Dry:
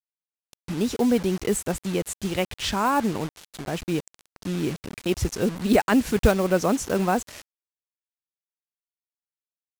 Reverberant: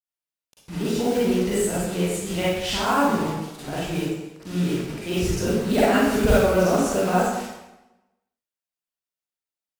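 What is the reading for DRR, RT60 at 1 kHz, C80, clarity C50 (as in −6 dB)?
−10.0 dB, 1.0 s, 1.0 dB, −5.0 dB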